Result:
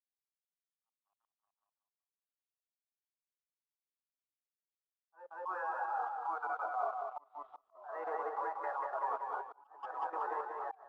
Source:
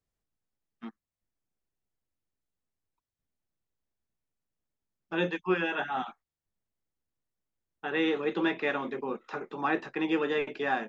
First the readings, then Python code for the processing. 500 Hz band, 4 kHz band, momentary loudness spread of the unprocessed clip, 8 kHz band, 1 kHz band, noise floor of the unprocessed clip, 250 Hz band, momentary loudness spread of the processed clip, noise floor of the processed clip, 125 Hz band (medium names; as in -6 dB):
-11.0 dB, under -30 dB, 13 LU, no reading, 0.0 dB, under -85 dBFS, -29.5 dB, 14 LU, under -85 dBFS, under -40 dB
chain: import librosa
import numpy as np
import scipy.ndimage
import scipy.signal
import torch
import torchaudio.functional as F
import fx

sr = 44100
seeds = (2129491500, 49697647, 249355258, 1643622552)

p1 = scipy.signal.sosfilt(scipy.signal.butter(4, 820.0, 'highpass', fs=sr, output='sos'), x)
p2 = fx.echo_pitch(p1, sr, ms=130, semitones=-2, count=3, db_per_echo=-6.0)
p3 = scipy.signal.sosfilt(scipy.signal.butter(4, 1100.0, 'lowpass', fs=sr, output='sos'), p2)
p4 = p3 + 10.0 ** (-12.5 / 20.0) * np.pad(p3, (int(350 * sr / 1000.0), 0))[:len(p3)]
p5 = fx.level_steps(p4, sr, step_db=16)
p6 = fx.leveller(p5, sr, passes=3)
p7 = fx.rider(p6, sr, range_db=4, speed_s=0.5)
p8 = p7 + fx.echo_feedback(p7, sr, ms=187, feedback_pct=52, wet_db=-3, dry=0)
p9 = fx.auto_swell(p8, sr, attack_ms=371.0)
y = fx.spectral_expand(p9, sr, expansion=1.5)